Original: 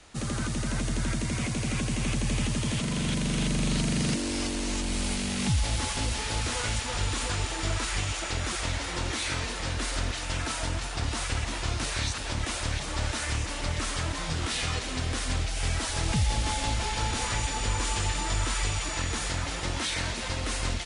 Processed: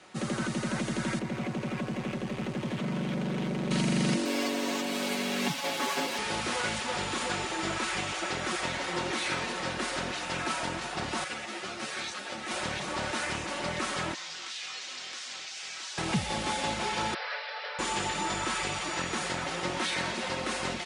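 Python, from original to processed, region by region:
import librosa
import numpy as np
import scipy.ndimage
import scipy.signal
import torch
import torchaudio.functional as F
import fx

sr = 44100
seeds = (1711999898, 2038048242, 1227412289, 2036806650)

y = fx.chain(x, sr, fx.lowpass(hz=1800.0, slope=6),
    fx.clip_hard(threshold_db=-29.0), at=(1.19, 3.71))
y = fx.chain(y, sr, fx.highpass(hz=210.0, slope=24),
    fx.comb(ms=7.2, depth=0.75),
    fx.resample_linear(factor=2), at=(4.25, 6.18))
y = fx.chain(y, sr, fx.highpass(hz=290.0, slope=6),
    fx.notch(hz=1000.0, q=6.1),
    fx.ensemble(), at=(11.24, 12.51))
y = fx.chain(y, sr, fx.lowpass(hz=6500.0, slope=24),
    fx.differentiator(),
    fx.env_flatten(amount_pct=70), at=(14.14, 15.98))
y = fx.chain(y, sr, fx.cheby_ripple_highpass(hz=430.0, ripple_db=9),
    fx.resample_bad(factor=4, down='none', up='filtered'), at=(17.14, 17.79))
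y = scipy.signal.sosfilt(scipy.signal.butter(2, 190.0, 'highpass', fs=sr, output='sos'), y)
y = fx.high_shelf(y, sr, hz=3900.0, db=-10.0)
y = y + 0.43 * np.pad(y, (int(5.4 * sr / 1000.0), 0))[:len(y)]
y = y * librosa.db_to_amplitude(2.5)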